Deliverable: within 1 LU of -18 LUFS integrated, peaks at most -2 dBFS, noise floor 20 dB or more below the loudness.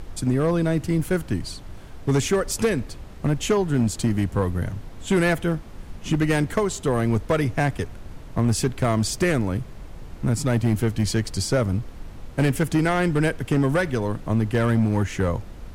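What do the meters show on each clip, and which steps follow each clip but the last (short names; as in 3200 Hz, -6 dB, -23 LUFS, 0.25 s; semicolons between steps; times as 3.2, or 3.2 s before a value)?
clipped 2.0%; flat tops at -14.0 dBFS; noise floor -40 dBFS; noise floor target -44 dBFS; loudness -23.5 LUFS; peak -14.0 dBFS; loudness target -18.0 LUFS
-> clip repair -14 dBFS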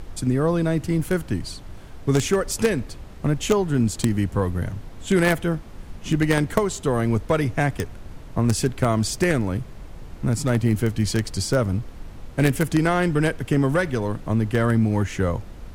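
clipped 0.0%; noise floor -40 dBFS; noise floor target -43 dBFS
-> noise print and reduce 6 dB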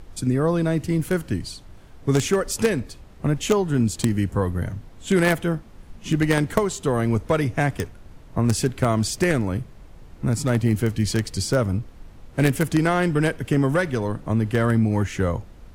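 noise floor -46 dBFS; loudness -23.0 LUFS; peak -5.0 dBFS; loudness target -18.0 LUFS
-> gain +5 dB; limiter -2 dBFS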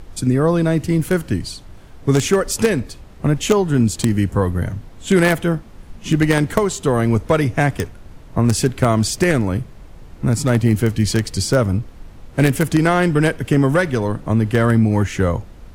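loudness -18.0 LUFS; peak -2.0 dBFS; noise floor -41 dBFS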